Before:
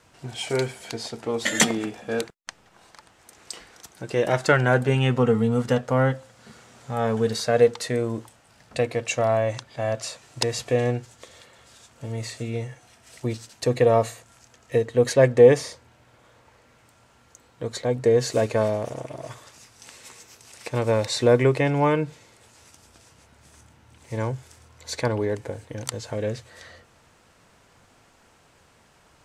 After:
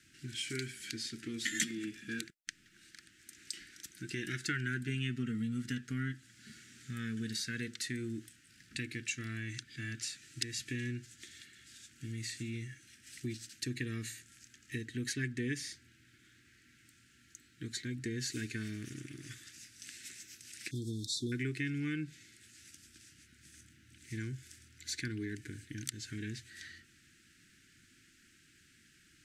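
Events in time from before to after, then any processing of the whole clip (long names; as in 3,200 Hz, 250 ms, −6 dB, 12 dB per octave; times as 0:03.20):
0:20.71–0:21.32: linear-phase brick-wall band-stop 530–3,200 Hz
whole clip: elliptic band-stop filter 330–1,600 Hz, stop band 40 dB; low-shelf EQ 130 Hz −9.5 dB; downward compressor 2 to 1, threshold −36 dBFS; level −2.5 dB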